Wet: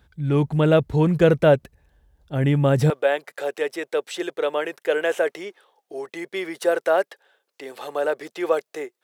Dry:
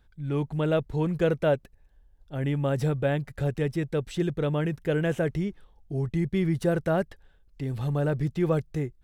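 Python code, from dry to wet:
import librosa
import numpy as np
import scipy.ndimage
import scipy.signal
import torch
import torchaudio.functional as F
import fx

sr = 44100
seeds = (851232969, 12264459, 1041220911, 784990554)

y = fx.highpass(x, sr, hz=fx.steps((0.0, 51.0), (2.9, 440.0)), slope=24)
y = y * 10.0 ** (8.0 / 20.0)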